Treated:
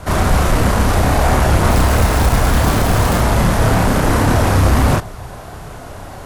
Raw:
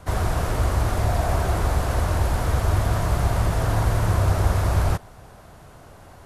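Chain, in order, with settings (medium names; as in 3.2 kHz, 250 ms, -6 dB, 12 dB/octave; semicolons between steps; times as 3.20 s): 1.69–3.18 s: short-mantissa float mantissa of 2-bit; sine folder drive 13 dB, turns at -7 dBFS; chorus voices 2, 1.5 Hz, delay 30 ms, depth 3 ms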